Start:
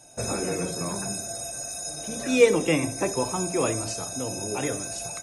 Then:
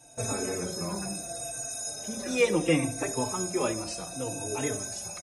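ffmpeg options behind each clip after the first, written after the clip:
-filter_complex "[0:a]asplit=2[s0][s1];[s1]adelay=3.9,afreqshift=-0.7[s2];[s0][s2]amix=inputs=2:normalize=1"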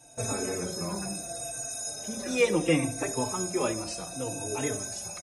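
-af anull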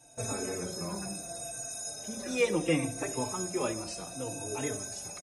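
-af "aecho=1:1:422|844|1266:0.0668|0.0287|0.0124,volume=0.668"

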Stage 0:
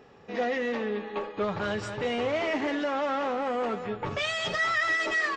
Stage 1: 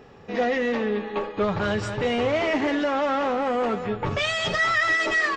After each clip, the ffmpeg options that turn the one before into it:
-af "lowshelf=f=130:g=7.5,volume=1.68"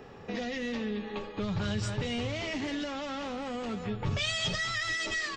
-filter_complex "[0:a]acrossover=split=200|3000[s0][s1][s2];[s1]acompressor=threshold=0.0141:ratio=10[s3];[s0][s3][s2]amix=inputs=3:normalize=0"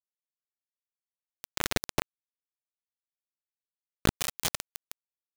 -af "acrusher=bits=3:mix=0:aa=0.000001,volume=1.88"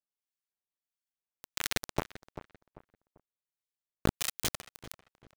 -filter_complex "[0:a]acrossover=split=1300[s0][s1];[s0]aeval=exprs='val(0)*(1-0.7/2+0.7/2*cos(2*PI*1.5*n/s))':c=same[s2];[s1]aeval=exprs='val(0)*(1-0.7/2-0.7/2*cos(2*PI*1.5*n/s))':c=same[s3];[s2][s3]amix=inputs=2:normalize=0,asplit=2[s4][s5];[s5]adelay=392,lowpass=f=1600:p=1,volume=0.251,asplit=2[s6][s7];[s7]adelay=392,lowpass=f=1600:p=1,volume=0.33,asplit=2[s8][s9];[s9]adelay=392,lowpass=f=1600:p=1,volume=0.33[s10];[s4][s6][s8][s10]amix=inputs=4:normalize=0"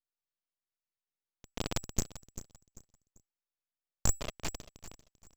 -af "lowpass=f=3300:t=q:w=0.5098,lowpass=f=3300:t=q:w=0.6013,lowpass=f=3300:t=q:w=0.9,lowpass=f=3300:t=q:w=2.563,afreqshift=-3900,aeval=exprs='abs(val(0))':c=same,volume=1.26"

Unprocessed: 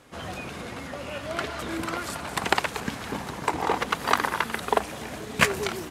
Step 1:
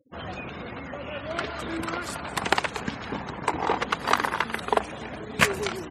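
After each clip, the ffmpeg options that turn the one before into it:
-af "afftfilt=real='re*gte(hypot(re,im),0.00891)':imag='im*gte(hypot(re,im),0.00891)':win_size=1024:overlap=0.75"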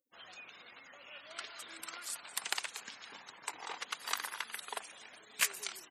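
-af "aderivative,volume=0.841"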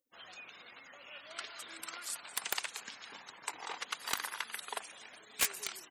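-af "aeval=exprs='(mod(9.44*val(0)+1,2)-1)/9.44':c=same,volume=1.12"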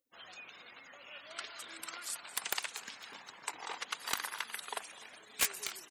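-af "aecho=1:1:252|504|756:0.0944|0.033|0.0116"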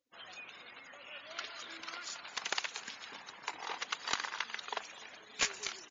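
-af "volume=1.26" -ar 16000 -c:a libmp3lame -b:a 48k

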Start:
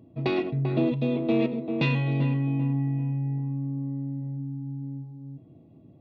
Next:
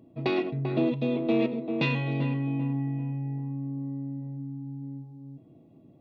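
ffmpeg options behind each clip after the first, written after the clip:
-af "equalizer=f=76:w=0.78:g=-8.5"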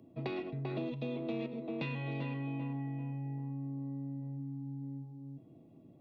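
-filter_complex "[0:a]acrossover=split=140|410|3600[s0][s1][s2][s3];[s0]acompressor=threshold=0.00891:ratio=4[s4];[s1]acompressor=threshold=0.01:ratio=4[s5];[s2]acompressor=threshold=0.0112:ratio=4[s6];[s3]acompressor=threshold=0.00141:ratio=4[s7];[s4][s5][s6][s7]amix=inputs=4:normalize=0,volume=0.708"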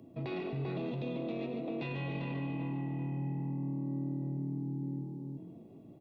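-filter_complex "[0:a]alimiter=level_in=3.55:limit=0.0631:level=0:latency=1:release=14,volume=0.282,asplit=6[s0][s1][s2][s3][s4][s5];[s1]adelay=143,afreqshift=39,volume=0.398[s6];[s2]adelay=286,afreqshift=78,volume=0.184[s7];[s3]adelay=429,afreqshift=117,volume=0.0841[s8];[s4]adelay=572,afreqshift=156,volume=0.0389[s9];[s5]adelay=715,afreqshift=195,volume=0.0178[s10];[s0][s6][s7][s8][s9][s10]amix=inputs=6:normalize=0,volume=1.58"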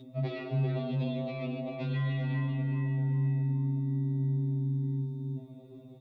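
-af "aeval=exprs='val(0)+0.00282*sin(2*PI*3700*n/s)':c=same,afftfilt=real='re*2.45*eq(mod(b,6),0)':imag='im*2.45*eq(mod(b,6),0)':win_size=2048:overlap=0.75,volume=1.88"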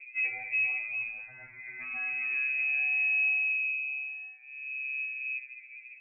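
-filter_complex "[0:a]lowpass=f=2300:t=q:w=0.5098,lowpass=f=2300:t=q:w=0.6013,lowpass=f=2300:t=q:w=0.9,lowpass=f=2300:t=q:w=2.563,afreqshift=-2700,asplit=2[s0][s1];[s1]afreqshift=0.35[s2];[s0][s2]amix=inputs=2:normalize=1,volume=1.19"

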